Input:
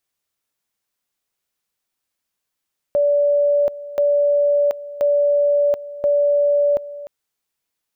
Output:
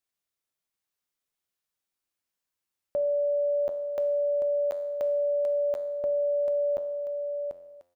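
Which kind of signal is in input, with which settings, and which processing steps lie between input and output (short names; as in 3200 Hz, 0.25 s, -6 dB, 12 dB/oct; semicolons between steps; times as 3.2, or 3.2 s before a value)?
two-level tone 578 Hz -13 dBFS, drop 16.5 dB, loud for 0.73 s, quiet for 0.30 s, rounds 4
resonator 88 Hz, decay 0.96 s, harmonics all, mix 70%; on a send: echo 0.741 s -6 dB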